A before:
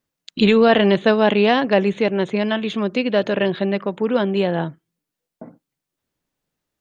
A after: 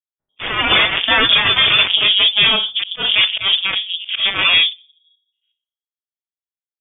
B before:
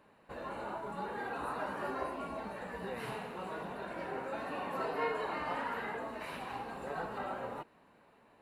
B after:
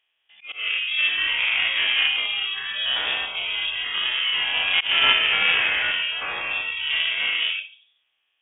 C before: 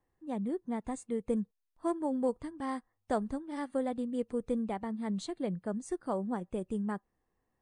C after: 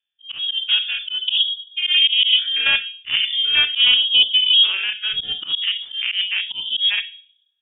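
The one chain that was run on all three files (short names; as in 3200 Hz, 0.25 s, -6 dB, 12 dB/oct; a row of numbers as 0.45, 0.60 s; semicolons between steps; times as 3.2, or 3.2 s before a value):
stepped spectrum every 0.1 s; dynamic EQ 260 Hz, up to +6 dB, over -31 dBFS, Q 0.79; wrapped overs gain 11.5 dB; spectral noise reduction 26 dB; shoebox room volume 430 m³, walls furnished, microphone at 0.76 m; added harmonics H 2 -12 dB, 3 -43 dB, 6 -12 dB, 7 -24 dB, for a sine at -5.5 dBFS; auto swell 0.137 s; inverted band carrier 3500 Hz; normalise peaks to -2 dBFS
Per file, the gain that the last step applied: +1.0, +23.0, +27.5 dB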